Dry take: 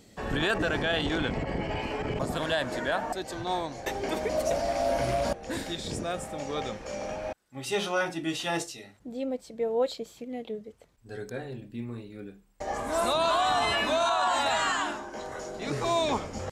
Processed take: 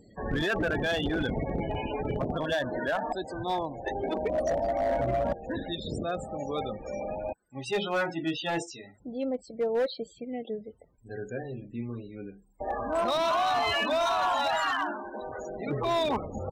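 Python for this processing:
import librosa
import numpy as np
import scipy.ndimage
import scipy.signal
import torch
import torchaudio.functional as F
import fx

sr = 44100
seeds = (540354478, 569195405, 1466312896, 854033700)

y = fx.spec_topn(x, sr, count=32)
y = np.clip(10.0 ** (23.5 / 20.0) * y, -1.0, 1.0) / 10.0 ** (23.5 / 20.0)
y = F.gain(torch.from_numpy(y), 1.0).numpy()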